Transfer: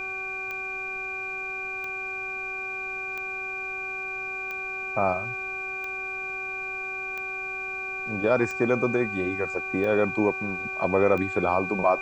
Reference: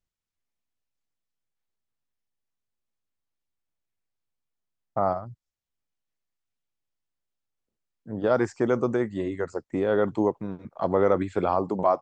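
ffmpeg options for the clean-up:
-af "adeclick=t=4,bandreject=f=380:t=h:w=4,bandreject=f=760:t=h:w=4,bandreject=f=1.14k:t=h:w=4,bandreject=f=1.52k:t=h:w=4,bandreject=f=2.4k:w=30,agate=range=-21dB:threshold=-25dB"

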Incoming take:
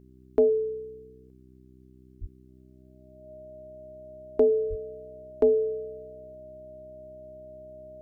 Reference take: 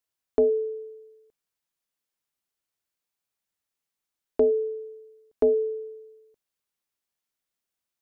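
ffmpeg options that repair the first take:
-filter_complex "[0:a]bandreject=f=63.8:t=h:w=4,bandreject=f=127.6:t=h:w=4,bandreject=f=191.4:t=h:w=4,bandreject=f=255.2:t=h:w=4,bandreject=f=319:t=h:w=4,bandreject=f=382.8:t=h:w=4,bandreject=f=620:w=30,asplit=3[a][b][c];[a]afade=t=out:st=2.2:d=0.02[d];[b]highpass=f=140:w=0.5412,highpass=f=140:w=1.3066,afade=t=in:st=2.2:d=0.02,afade=t=out:st=2.32:d=0.02[e];[c]afade=t=in:st=2.32:d=0.02[f];[d][e][f]amix=inputs=3:normalize=0,asplit=3[g][h][i];[g]afade=t=out:st=4.69:d=0.02[j];[h]highpass=f=140:w=0.5412,highpass=f=140:w=1.3066,afade=t=in:st=4.69:d=0.02,afade=t=out:st=4.81:d=0.02[k];[i]afade=t=in:st=4.81:d=0.02[l];[j][k][l]amix=inputs=3:normalize=0"

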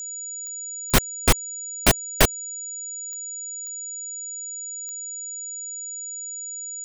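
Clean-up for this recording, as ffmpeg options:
-af "adeclick=t=4,bandreject=f=6.9k:w=30"

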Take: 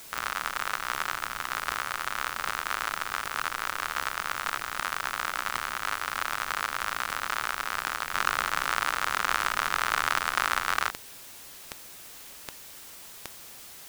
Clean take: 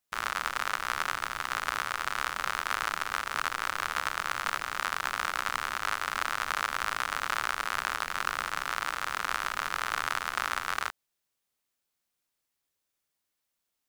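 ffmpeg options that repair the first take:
-af "adeclick=t=4,afwtdn=0.005,asetnsamples=n=441:p=0,asendcmd='8.13 volume volume -4.5dB',volume=0dB"

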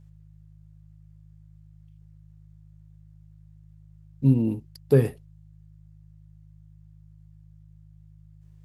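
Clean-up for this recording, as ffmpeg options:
-af "bandreject=f=52.1:t=h:w=4,bandreject=f=104.2:t=h:w=4,bandreject=f=156.3:t=h:w=4"

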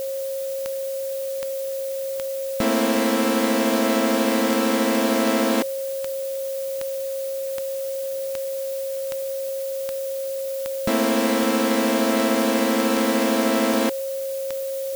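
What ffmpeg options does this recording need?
-af "adeclick=t=4,bandreject=f=540:w=30,afftdn=nr=30:nf=-28"

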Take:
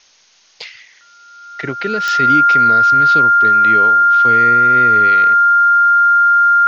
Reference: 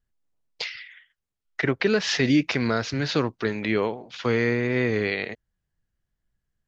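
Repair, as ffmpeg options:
-af "adeclick=t=4,bandreject=f=1.4k:w=30,agate=range=-21dB:threshold=-39dB"

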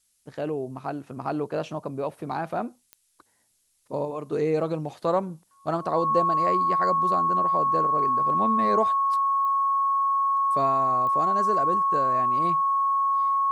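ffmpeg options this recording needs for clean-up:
-af "adeclick=t=4,bandreject=f=1.1k:w=30,agate=range=-21dB:threshold=-56dB"

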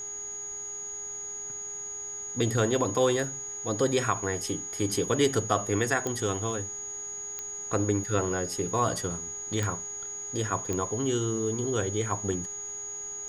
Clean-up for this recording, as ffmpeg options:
-af "adeclick=t=4,bandreject=f=409.9:t=h:w=4,bandreject=f=819.8:t=h:w=4,bandreject=f=1.2297k:t=h:w=4,bandreject=f=1.6396k:t=h:w=4,bandreject=f=2.0495k:t=h:w=4,bandreject=f=6.7k:w=30,agate=range=-21dB:threshold=-30dB"

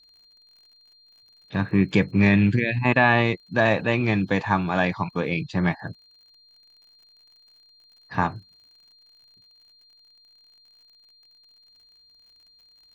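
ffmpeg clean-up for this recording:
-af "adeclick=t=4,bandreject=f=4.2k:w=30"

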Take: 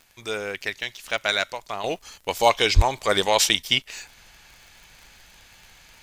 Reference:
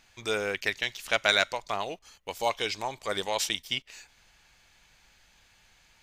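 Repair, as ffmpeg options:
-filter_complex "[0:a]adeclick=t=4,asplit=3[a][b][c];[a]afade=t=out:st=2.75:d=0.02[d];[b]highpass=f=140:w=0.5412,highpass=f=140:w=1.3066,afade=t=in:st=2.75:d=0.02,afade=t=out:st=2.87:d=0.02[e];[c]afade=t=in:st=2.87:d=0.02[f];[d][e][f]amix=inputs=3:normalize=0,agate=range=-21dB:threshold=-44dB,asetnsamples=n=441:p=0,asendcmd='1.84 volume volume -10dB',volume=0dB"

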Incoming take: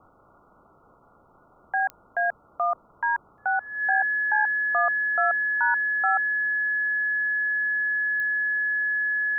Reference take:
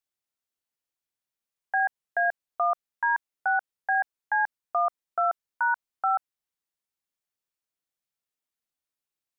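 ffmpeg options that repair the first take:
-af "adeclick=t=4,bandreject=f=1.7k:w=30,afwtdn=0.005"

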